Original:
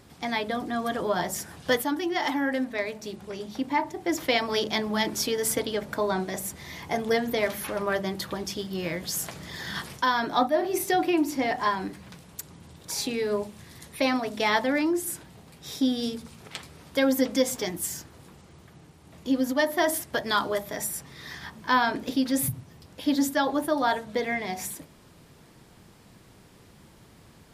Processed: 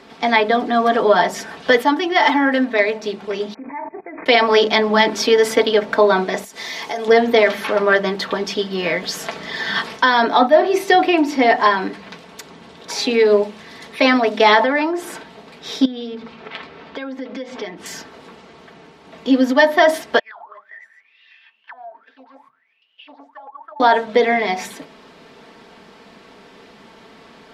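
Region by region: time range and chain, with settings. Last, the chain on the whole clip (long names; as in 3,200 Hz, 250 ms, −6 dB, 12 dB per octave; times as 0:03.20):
0:03.54–0:04.26: Chebyshev low-pass filter 2,500 Hz, order 10 + output level in coarse steps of 21 dB + one half of a high-frequency compander encoder only
0:06.44–0:07.08: bass and treble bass −8 dB, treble +12 dB + downward compressor, threshold −34 dBFS
0:14.60–0:15.18: parametric band 870 Hz +7.5 dB 2.3 octaves + downward compressor 2.5 to 1, threshold −28 dBFS
0:15.85–0:17.86: low-pass filter 3,500 Hz + downward compressor 5 to 1, threshold −38 dBFS
0:20.19–0:23.80: envelope filter 680–3,300 Hz, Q 22, down, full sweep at −19.5 dBFS + downward compressor 12 to 1, threshold −47 dBFS + highs frequency-modulated by the lows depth 0.2 ms
whole clip: three-way crossover with the lows and the highs turned down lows −18 dB, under 250 Hz, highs −22 dB, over 4,900 Hz; comb filter 4.5 ms, depth 48%; boost into a limiter +13.5 dB; level −1 dB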